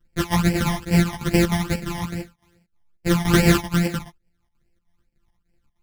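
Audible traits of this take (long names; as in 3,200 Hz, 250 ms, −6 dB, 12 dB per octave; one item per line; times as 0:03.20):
a buzz of ramps at a fixed pitch in blocks of 256 samples
phaser sweep stages 12, 2.4 Hz, lowest notch 430–1,200 Hz
chopped level 3.3 Hz, depth 65%, duty 75%
a shimmering, thickened sound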